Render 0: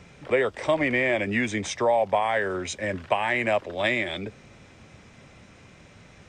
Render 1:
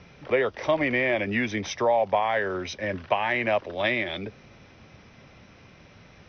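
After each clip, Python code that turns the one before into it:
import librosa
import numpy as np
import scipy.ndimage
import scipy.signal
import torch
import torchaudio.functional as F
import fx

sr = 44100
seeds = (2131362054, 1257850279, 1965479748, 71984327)

y = scipy.signal.sosfilt(scipy.signal.cheby1(10, 1.0, 6100.0, 'lowpass', fs=sr, output='sos'), x)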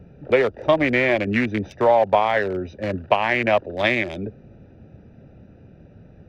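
y = fx.wiener(x, sr, points=41)
y = F.gain(torch.from_numpy(y), 7.0).numpy()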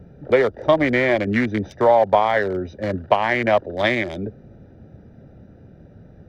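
y = fx.peak_eq(x, sr, hz=2600.0, db=-12.5, octaves=0.21)
y = F.gain(torch.from_numpy(y), 1.5).numpy()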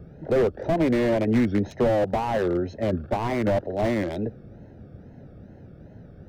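y = fx.wow_flutter(x, sr, seeds[0], rate_hz=2.1, depth_cents=140.0)
y = fx.slew_limit(y, sr, full_power_hz=61.0)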